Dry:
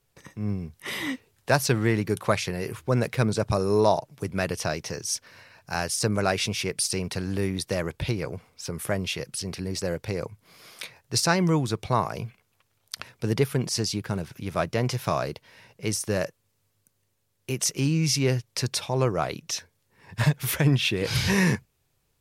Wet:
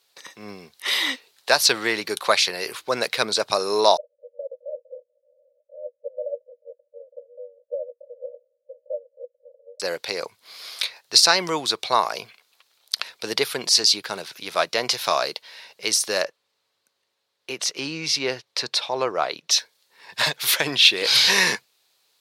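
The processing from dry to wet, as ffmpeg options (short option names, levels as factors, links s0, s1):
-filter_complex "[0:a]asettb=1/sr,asplit=3[s0][s1][s2];[s0]atrim=end=3.974[s3];[s1]atrim=start=3.97:end=9.8,asetpts=PTS-STARTPTS,afade=t=in:d=0.004:c=qsin,afade=t=out:st=5.826:d=0.004:c=qsin,asuperpass=centerf=540:order=12:qfactor=4.1[s4];[s2]atrim=start=9.796[s5];[s3][s4]acrossfade=d=0.004:c1=hsin:c2=qsin[s6];[s6][s5]acrossfade=d=0.004:c1=qsin:c2=hsin,asettb=1/sr,asplit=3[s7][s8][s9];[s7]atrim=end=16.224[s10];[s8]atrim=start=16.22:end=19.51,asetpts=PTS-STARTPTS,afade=t=in:d=0.004:c=qsin,afade=t=out:st=3.286:d=0.004:c=qsin,lowpass=f=1900:p=1[s11];[s9]atrim=start=19.506[s12];[s10][s11]acrossfade=d=0.004:c1=hsin:c2=qsin[s13];[s13][s12]acrossfade=d=0.004:c1=qsin:c2=hsin,highpass=570,equalizer=f=4100:t=o:w=0.75:g=11.5,alimiter=level_in=2.24:limit=0.891:release=50:level=0:latency=1,volume=0.891"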